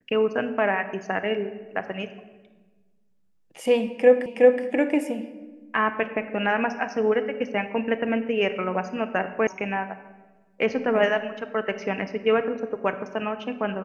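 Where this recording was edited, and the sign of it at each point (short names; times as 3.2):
4.26 repeat of the last 0.37 s
9.47 sound cut off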